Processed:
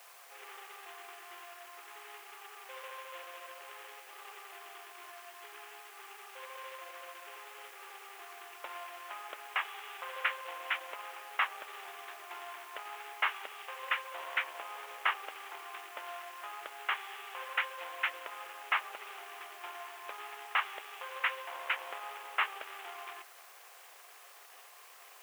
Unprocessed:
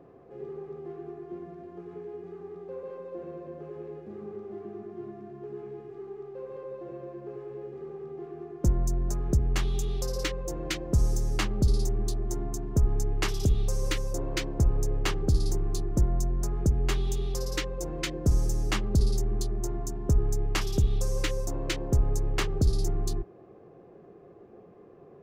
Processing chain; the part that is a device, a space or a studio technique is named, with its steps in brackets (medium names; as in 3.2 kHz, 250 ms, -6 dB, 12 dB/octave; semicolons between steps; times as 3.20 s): army field radio (band-pass 320–2800 Hz; CVSD coder 16 kbps; white noise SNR 25 dB); high-pass 890 Hz 24 dB/octave; trim +7 dB